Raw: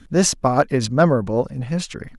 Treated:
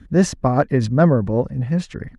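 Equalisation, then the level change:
high-pass filter 41 Hz
spectral tilt −2.5 dB per octave
parametric band 1,800 Hz +7.5 dB 0.22 octaves
−3.0 dB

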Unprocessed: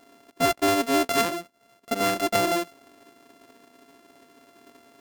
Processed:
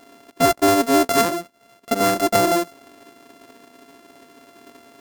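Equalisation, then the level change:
dynamic equaliser 2,800 Hz, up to −6 dB, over −39 dBFS, Q 1.1
+6.5 dB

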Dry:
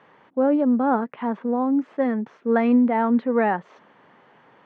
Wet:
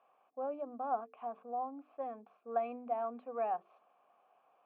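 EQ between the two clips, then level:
formant filter a
mains-hum notches 50/100/150/200/250/300/350/400/450 Hz
−5.5 dB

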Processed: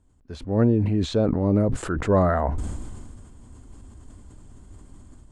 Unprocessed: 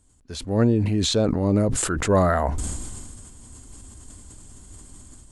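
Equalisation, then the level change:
high-shelf EQ 2,500 Hz −11 dB
high-shelf EQ 5,800 Hz −8 dB
0.0 dB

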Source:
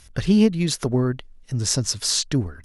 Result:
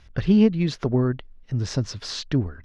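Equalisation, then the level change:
high-frequency loss of the air 220 metres
0.0 dB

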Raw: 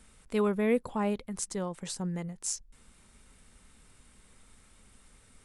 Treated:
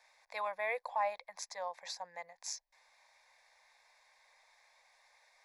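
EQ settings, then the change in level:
inverse Chebyshev high-pass filter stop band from 270 Hz, stop band 40 dB
high-shelf EQ 5,400 Hz −10 dB
phaser with its sweep stopped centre 2,000 Hz, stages 8
+3.5 dB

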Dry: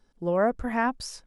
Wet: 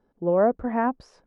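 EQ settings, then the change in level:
resonant band-pass 560 Hz, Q 0.62
spectral tilt −2 dB per octave
+2.5 dB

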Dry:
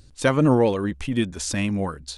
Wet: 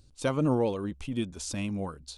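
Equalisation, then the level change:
parametric band 1,800 Hz −9 dB 0.46 octaves
−8.0 dB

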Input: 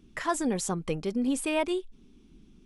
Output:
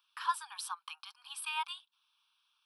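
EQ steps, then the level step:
Butterworth high-pass 880 Hz 72 dB per octave
phaser with its sweep stopped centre 2,000 Hz, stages 6
0.0 dB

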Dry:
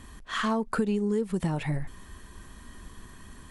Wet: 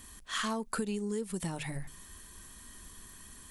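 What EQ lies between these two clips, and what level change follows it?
first-order pre-emphasis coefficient 0.8
mains-hum notches 50/100/150 Hz
+6.0 dB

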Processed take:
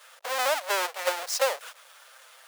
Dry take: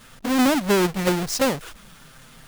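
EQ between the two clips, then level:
elliptic high-pass filter 530 Hz, stop band 70 dB
−2.0 dB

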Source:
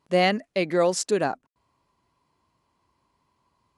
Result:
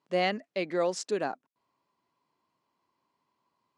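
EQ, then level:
band-pass filter 190–6,800 Hz
−6.5 dB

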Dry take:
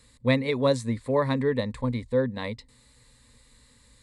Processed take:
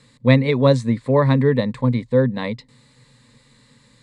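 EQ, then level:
high-frequency loss of the air 70 metres
low shelf with overshoot 100 Hz −11 dB, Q 3
+6.5 dB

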